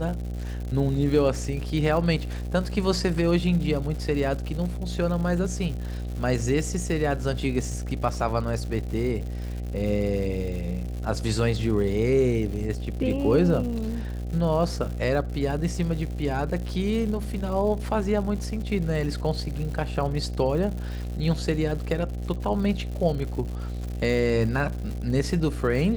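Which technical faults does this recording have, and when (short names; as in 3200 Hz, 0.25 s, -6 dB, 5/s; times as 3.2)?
buzz 60 Hz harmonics 13 -31 dBFS
crackle 190/s -34 dBFS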